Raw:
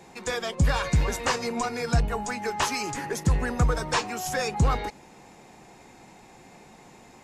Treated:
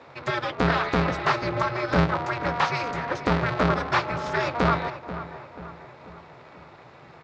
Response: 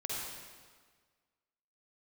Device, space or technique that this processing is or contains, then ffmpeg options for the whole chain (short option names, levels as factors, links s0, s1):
ring modulator pedal into a guitar cabinet: -filter_complex "[0:a]asettb=1/sr,asplit=3[s0][s1][s2];[s0]atrim=end=1.574[s3];[s1]atrim=start=1.57:end=2.06,asetpts=PTS-STARTPTS,afade=t=in:d=0.004:c=qsin,afade=t=out:st=0.486:d=0.004:c=qsin,asubboost=boost=6.5:cutoff=81[s4];[s2]atrim=start=2.056[s5];[s3][s4]acrossfade=d=0.004:c1=hsin:c2=qsin[s6];[s6][s5]acrossfade=d=0.004:c1=qsin:c2=hsin,aeval=exprs='val(0)*sgn(sin(2*PI*120*n/s))':c=same,highpass=110,equalizer=f=140:t=q:w=4:g=8,equalizer=f=200:t=q:w=4:g=-8,equalizer=f=290:t=q:w=4:g=-6,equalizer=f=1300:t=q:w=4:g=5,equalizer=f=3000:t=q:w=4:g=-5,lowpass=f=4100:w=0.5412,lowpass=f=4100:w=1.3066,asplit=2[s7][s8];[s8]adelay=486,lowpass=f=2200:p=1,volume=0.251,asplit=2[s9][s10];[s10]adelay=486,lowpass=f=2200:p=1,volume=0.53,asplit=2[s11][s12];[s12]adelay=486,lowpass=f=2200:p=1,volume=0.53,asplit=2[s13][s14];[s14]adelay=486,lowpass=f=2200:p=1,volume=0.53,asplit=2[s15][s16];[s16]adelay=486,lowpass=f=2200:p=1,volume=0.53,asplit=2[s17][s18];[s18]adelay=486,lowpass=f=2200:p=1,volume=0.53[s19];[s7][s9][s11][s13][s15][s17][s19]amix=inputs=7:normalize=0,volume=1.33"